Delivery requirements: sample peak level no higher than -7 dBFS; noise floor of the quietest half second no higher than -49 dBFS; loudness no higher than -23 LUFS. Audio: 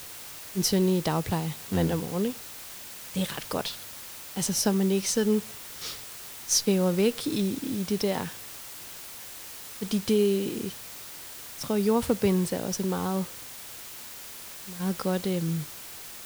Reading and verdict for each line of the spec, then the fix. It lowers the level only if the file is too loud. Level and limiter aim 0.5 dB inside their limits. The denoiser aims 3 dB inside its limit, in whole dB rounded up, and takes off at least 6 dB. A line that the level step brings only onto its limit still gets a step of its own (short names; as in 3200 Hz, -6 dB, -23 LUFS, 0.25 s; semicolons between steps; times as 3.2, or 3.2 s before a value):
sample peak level -9.5 dBFS: OK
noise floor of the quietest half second -42 dBFS: fail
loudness -28.0 LUFS: OK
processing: denoiser 10 dB, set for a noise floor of -42 dBFS